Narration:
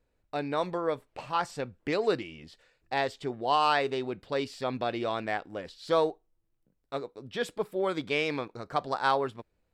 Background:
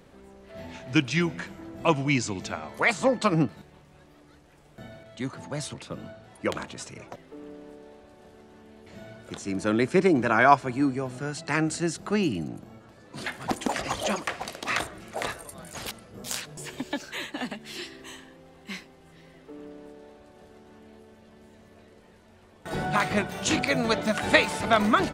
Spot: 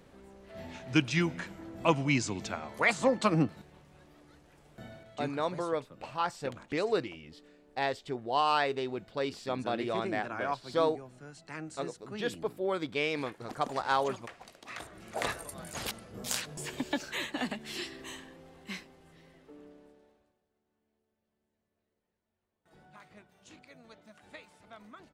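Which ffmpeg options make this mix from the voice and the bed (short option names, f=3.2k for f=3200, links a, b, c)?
-filter_complex "[0:a]adelay=4850,volume=-2.5dB[a];[1:a]volume=12dB,afade=t=out:st=4.92:d=0.71:silence=0.223872,afade=t=in:st=14.76:d=0.54:silence=0.16788,afade=t=out:st=18.18:d=2.23:silence=0.0354813[b];[a][b]amix=inputs=2:normalize=0"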